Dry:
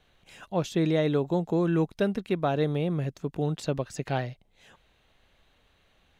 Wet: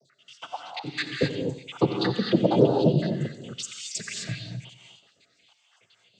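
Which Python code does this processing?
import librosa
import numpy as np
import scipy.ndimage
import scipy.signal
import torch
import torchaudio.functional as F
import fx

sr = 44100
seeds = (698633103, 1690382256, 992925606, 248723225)

y = fx.spec_dropout(x, sr, seeds[0], share_pct=84)
y = fx.high_shelf(y, sr, hz=2400.0, db=8.5)
y = fx.level_steps(y, sr, step_db=21, at=(0.54, 0.98))
y = fx.noise_vocoder(y, sr, seeds[1], bands=16)
y = fx.echo_feedback(y, sr, ms=89, feedback_pct=45, wet_db=-15.0)
y = fx.rev_gated(y, sr, seeds[2], gate_ms=280, shape='rising', drr_db=1.5)
y = y * 10.0 ** (8.0 / 20.0)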